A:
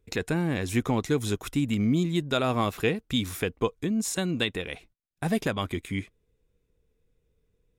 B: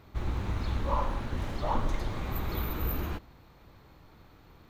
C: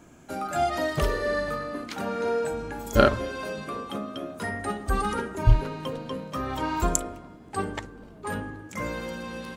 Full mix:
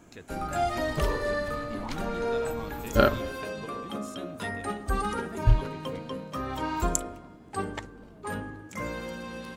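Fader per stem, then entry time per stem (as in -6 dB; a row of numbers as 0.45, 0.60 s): -17.0, -10.0, -2.5 dB; 0.00, 0.15, 0.00 s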